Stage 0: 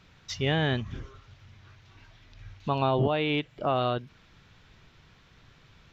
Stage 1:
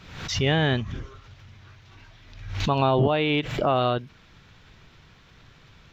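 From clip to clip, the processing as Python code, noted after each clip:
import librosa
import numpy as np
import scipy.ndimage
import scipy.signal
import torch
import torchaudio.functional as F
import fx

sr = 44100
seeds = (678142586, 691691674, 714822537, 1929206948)

y = fx.pre_swell(x, sr, db_per_s=65.0)
y = y * librosa.db_to_amplitude(4.0)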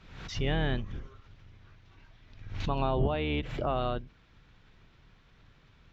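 y = fx.octave_divider(x, sr, octaves=2, level_db=1.0)
y = fx.high_shelf(y, sr, hz=5900.0, db=-9.5)
y = y * librosa.db_to_amplitude(-8.5)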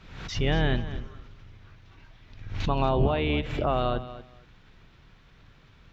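y = fx.echo_feedback(x, sr, ms=234, feedback_pct=18, wet_db=-14.5)
y = y * librosa.db_to_amplitude(4.5)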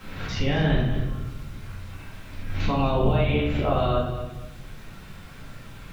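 y = fx.quant_dither(x, sr, seeds[0], bits=10, dither='none')
y = fx.room_shoebox(y, sr, seeds[1], volume_m3=200.0, walls='mixed', distance_m=2.1)
y = fx.band_squash(y, sr, depth_pct=40)
y = y * librosa.db_to_amplitude(-5.0)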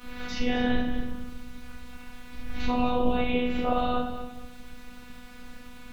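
y = fx.robotise(x, sr, hz=247.0)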